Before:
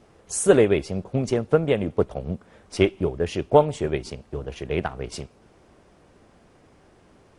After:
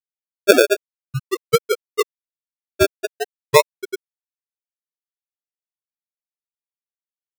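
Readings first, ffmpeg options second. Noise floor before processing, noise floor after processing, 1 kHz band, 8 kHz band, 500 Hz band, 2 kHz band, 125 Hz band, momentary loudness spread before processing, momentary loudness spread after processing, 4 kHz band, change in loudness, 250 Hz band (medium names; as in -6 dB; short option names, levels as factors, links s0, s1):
-56 dBFS, under -85 dBFS, +3.5 dB, +3.0 dB, +1.5 dB, +8.5 dB, -5.5 dB, 16 LU, 17 LU, +9.0 dB, +4.0 dB, -4.0 dB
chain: -af "tiltshelf=f=970:g=4.5,afftfilt=real='re*gte(hypot(re,im),1.26)':imag='im*gte(hypot(re,im),1.26)':win_size=1024:overlap=0.75,acrusher=samples=34:mix=1:aa=0.000001:lfo=1:lforange=20.4:lforate=0.44,volume=1.19"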